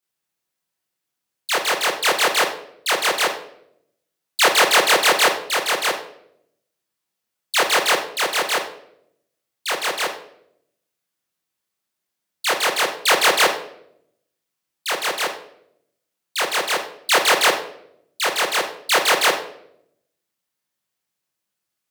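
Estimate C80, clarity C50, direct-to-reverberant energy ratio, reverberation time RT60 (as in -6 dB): 11.0 dB, 7.0 dB, -5.0 dB, 0.75 s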